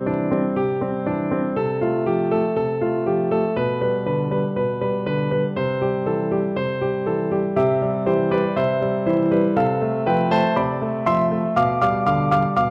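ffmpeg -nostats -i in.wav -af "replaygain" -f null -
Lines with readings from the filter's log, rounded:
track_gain = +2.6 dB
track_peak = 0.222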